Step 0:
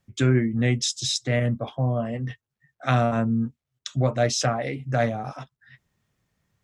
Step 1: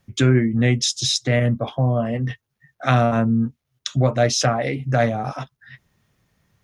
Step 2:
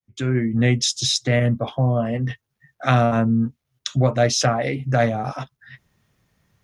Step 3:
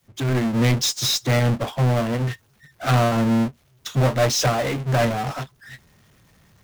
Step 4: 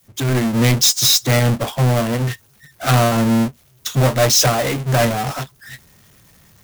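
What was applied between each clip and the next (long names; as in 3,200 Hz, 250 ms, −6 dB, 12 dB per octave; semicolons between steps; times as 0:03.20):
notch filter 7,700 Hz, Q 6.8; in parallel at −1 dB: downward compressor, threshold −31 dBFS, peak gain reduction 15 dB; on the sum: level +2.5 dB
fade in at the beginning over 0.58 s
power curve on the samples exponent 0.35; expander for the loud parts 2.5 to 1, over −22 dBFS; level −8 dB
high-shelf EQ 6,200 Hz +11 dB; level +3.5 dB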